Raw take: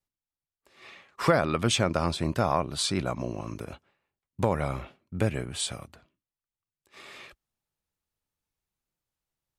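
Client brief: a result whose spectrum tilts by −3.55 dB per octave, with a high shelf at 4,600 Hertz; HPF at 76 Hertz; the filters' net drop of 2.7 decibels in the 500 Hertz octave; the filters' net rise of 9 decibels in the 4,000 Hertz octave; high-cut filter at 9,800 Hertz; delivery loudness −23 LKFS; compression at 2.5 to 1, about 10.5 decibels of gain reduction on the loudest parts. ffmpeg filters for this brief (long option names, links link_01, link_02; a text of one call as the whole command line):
ffmpeg -i in.wav -af "highpass=76,lowpass=9800,equalizer=frequency=500:width_type=o:gain=-3.5,equalizer=frequency=4000:width_type=o:gain=8.5,highshelf=frequency=4600:gain=4.5,acompressor=threshold=-32dB:ratio=2.5,volume=11.5dB" out.wav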